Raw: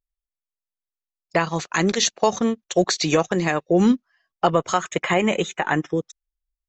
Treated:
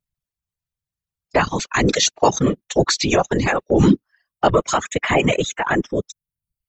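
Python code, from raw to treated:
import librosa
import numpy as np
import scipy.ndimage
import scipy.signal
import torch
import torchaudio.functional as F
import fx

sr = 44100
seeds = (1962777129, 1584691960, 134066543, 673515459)

y = fx.whisperise(x, sr, seeds[0])
y = fx.dereverb_blind(y, sr, rt60_s=0.67)
y = fx.transient(y, sr, attack_db=-3, sustain_db=3)
y = F.gain(torch.from_numpy(y), 4.0).numpy()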